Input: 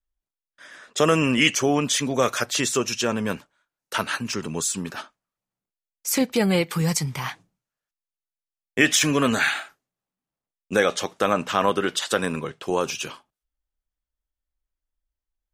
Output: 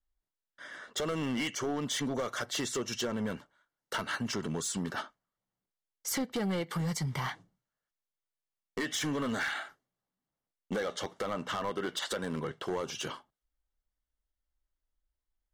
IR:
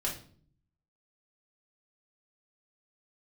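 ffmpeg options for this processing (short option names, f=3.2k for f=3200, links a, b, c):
-af "highshelf=f=5.2k:g=-10,acompressor=threshold=-29dB:ratio=4,volume=28dB,asoftclip=hard,volume=-28dB,asuperstop=centerf=2500:order=4:qfactor=6.8"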